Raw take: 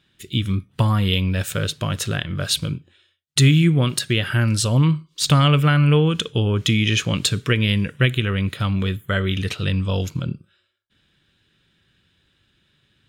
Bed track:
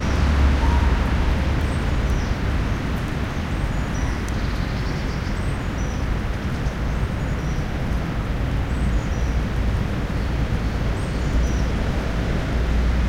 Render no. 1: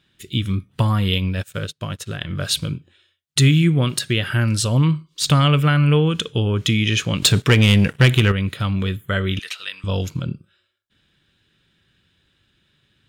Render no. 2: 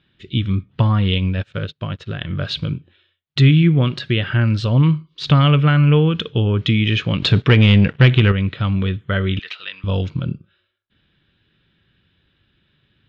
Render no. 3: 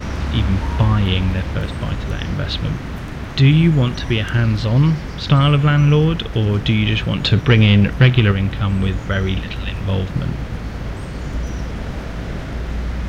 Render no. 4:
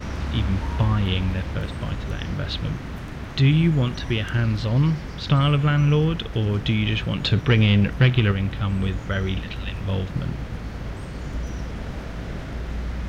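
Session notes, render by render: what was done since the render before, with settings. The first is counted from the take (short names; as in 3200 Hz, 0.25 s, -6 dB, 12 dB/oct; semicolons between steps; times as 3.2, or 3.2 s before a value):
1.18–2.21 upward expander 2.5:1, over -39 dBFS; 7.22–8.32 sample leveller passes 2; 9.39–9.84 HPF 1300 Hz
LPF 3900 Hz 24 dB/oct; low shelf 400 Hz +3 dB
add bed track -3.5 dB
gain -5.5 dB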